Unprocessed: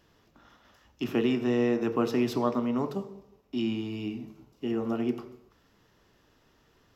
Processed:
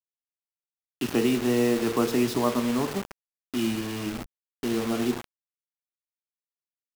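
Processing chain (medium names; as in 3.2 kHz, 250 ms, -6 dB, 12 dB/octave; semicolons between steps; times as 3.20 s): bit crusher 6-bit; 3.71–4.26 s: hysteresis with a dead band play -40.5 dBFS; trim +2.5 dB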